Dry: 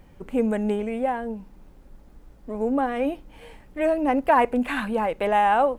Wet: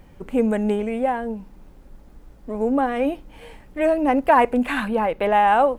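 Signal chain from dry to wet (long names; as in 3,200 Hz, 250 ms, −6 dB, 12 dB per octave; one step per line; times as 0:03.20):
0:04.88–0:05.48: parametric band 7,700 Hz −8.5 dB 0.91 octaves
level +3 dB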